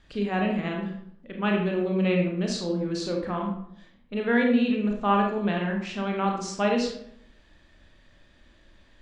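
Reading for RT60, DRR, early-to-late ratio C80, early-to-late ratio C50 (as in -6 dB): 0.70 s, 0.5 dB, 8.0 dB, 4.0 dB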